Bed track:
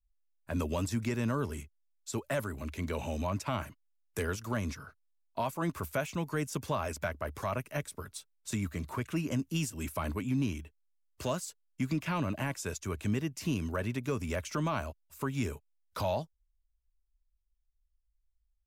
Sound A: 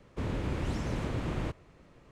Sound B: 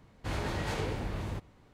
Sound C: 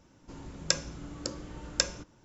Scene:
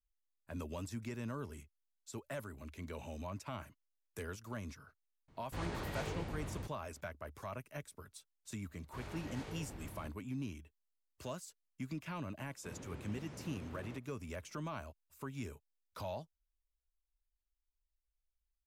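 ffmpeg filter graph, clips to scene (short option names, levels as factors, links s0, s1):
-filter_complex "[2:a]asplit=2[s0][s1];[0:a]volume=0.299[s2];[s0]aresample=22050,aresample=44100[s3];[1:a]highpass=100[s4];[s3]atrim=end=1.73,asetpts=PTS-STARTPTS,volume=0.422,afade=t=in:d=0.004:c=hsin,afade=t=out:st=1.726:d=0.004:c=hsin,adelay=5280[s5];[s1]atrim=end=1.73,asetpts=PTS-STARTPTS,volume=0.2,afade=t=in:d=0.004:c=hsin,afade=t=out:st=1.726:d=0.004:c=hsin,adelay=8690[s6];[s4]atrim=end=2.11,asetpts=PTS-STARTPTS,volume=0.178,afade=t=in:d=0.004:c=hsin,afade=t=out:st=2.106:d=0.004:c=hsin,adelay=12470[s7];[s2][s5][s6][s7]amix=inputs=4:normalize=0"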